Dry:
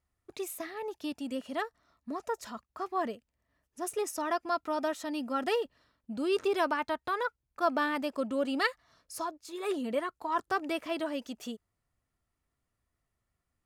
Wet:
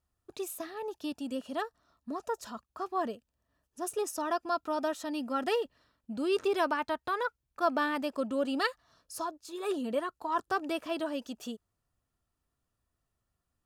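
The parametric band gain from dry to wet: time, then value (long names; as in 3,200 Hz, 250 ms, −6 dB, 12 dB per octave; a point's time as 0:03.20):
parametric band 2,100 Hz 0.21 octaves
0:04.69 −14.5 dB
0:05.31 −4 dB
0:08.04 −4 dB
0:08.64 −12 dB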